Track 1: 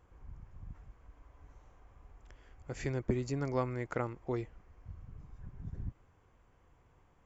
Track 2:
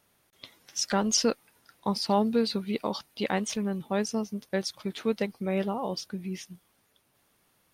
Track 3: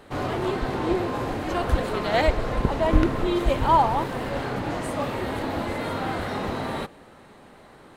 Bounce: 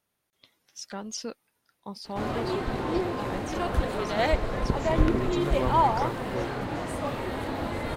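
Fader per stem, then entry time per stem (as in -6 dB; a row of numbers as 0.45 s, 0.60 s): +2.0 dB, -11.0 dB, -3.5 dB; 2.05 s, 0.00 s, 2.05 s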